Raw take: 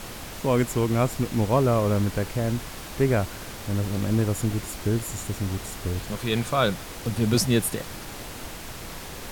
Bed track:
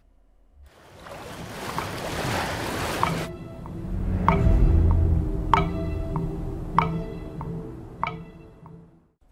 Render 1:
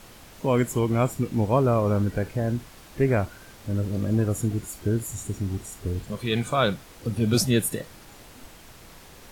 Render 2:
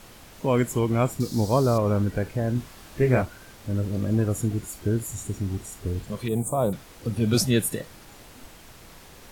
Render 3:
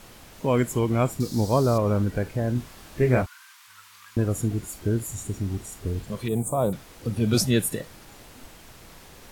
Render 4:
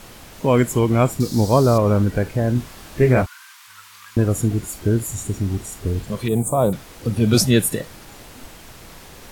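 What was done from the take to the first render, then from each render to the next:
noise reduction from a noise print 10 dB
0:01.20–0:01.78: high shelf with overshoot 3,500 Hz +9.5 dB, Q 3; 0:02.53–0:03.22: double-tracking delay 24 ms −3.5 dB; 0:06.28–0:06.73: drawn EQ curve 950 Hz 0 dB, 1,500 Hz −21 dB, 5,200 Hz −21 dB, 8,000 Hz +10 dB
0:03.26–0:04.17: elliptic high-pass filter 990 Hz
level +6 dB; brickwall limiter −3 dBFS, peak gain reduction 2.5 dB

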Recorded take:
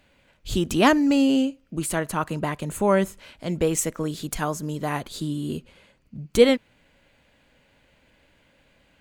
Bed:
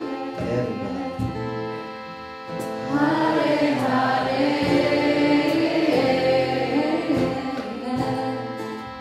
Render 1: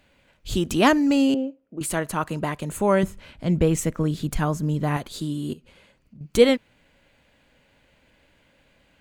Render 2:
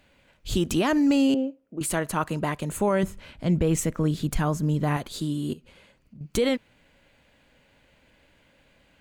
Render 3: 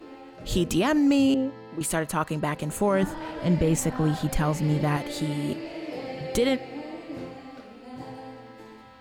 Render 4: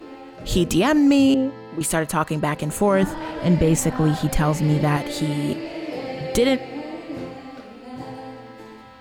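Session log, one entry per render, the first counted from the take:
0:01.34–0:01.81: resonant band-pass 480 Hz, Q 1.2; 0:03.03–0:04.97: bass and treble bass +9 dB, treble −5 dB; 0:05.53–0:06.21: downward compressor 4 to 1, threshold −45 dBFS
brickwall limiter −13.5 dBFS, peak gain reduction 11 dB
mix in bed −15.5 dB
level +5 dB

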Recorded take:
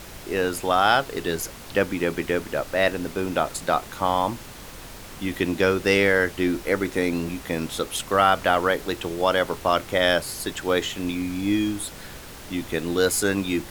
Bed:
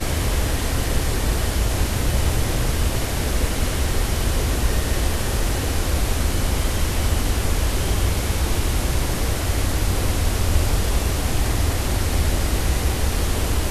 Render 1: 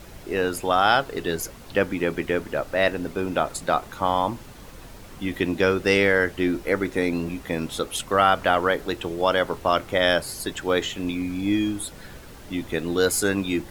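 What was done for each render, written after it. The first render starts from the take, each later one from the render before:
broadband denoise 7 dB, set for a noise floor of −41 dBFS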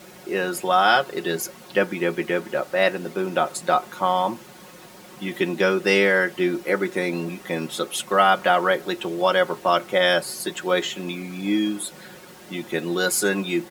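high-pass filter 190 Hz 12 dB per octave
comb filter 5.5 ms, depth 71%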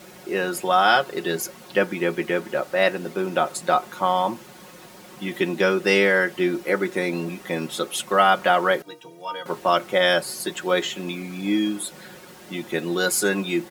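0:08.82–0:09.46: stiff-string resonator 140 Hz, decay 0.31 s, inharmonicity 0.03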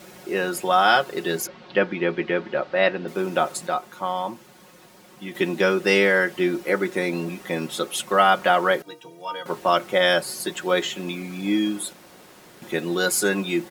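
0:01.47–0:03.08: low-pass filter 4,300 Hz 24 dB per octave
0:03.67–0:05.35: clip gain −5.5 dB
0:11.93–0:12.62: fill with room tone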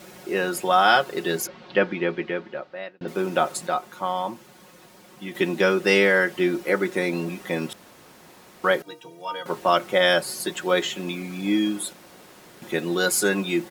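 0:01.88–0:03.01: fade out
0:07.73–0:08.64: fill with room tone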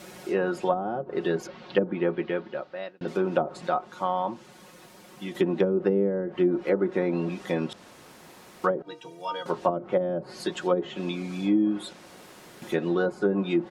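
treble cut that deepens with the level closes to 370 Hz, closed at −15.5 dBFS
dynamic equaliser 2,100 Hz, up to −6 dB, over −46 dBFS, Q 1.6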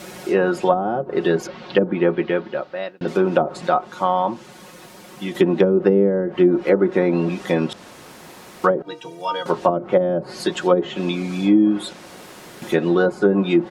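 level +8 dB
brickwall limiter −3 dBFS, peak gain reduction 2.5 dB

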